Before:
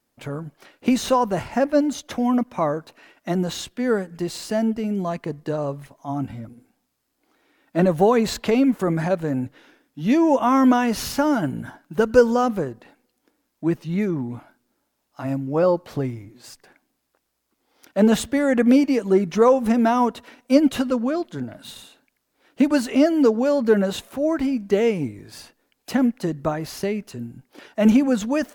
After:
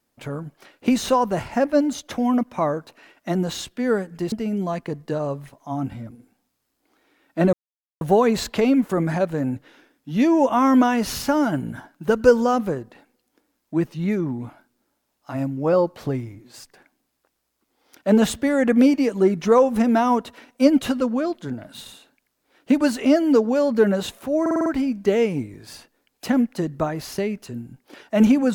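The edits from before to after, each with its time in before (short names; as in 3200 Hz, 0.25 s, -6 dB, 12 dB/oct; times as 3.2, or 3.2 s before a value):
4.32–4.7 cut
7.91 insert silence 0.48 s
24.31 stutter 0.05 s, 6 plays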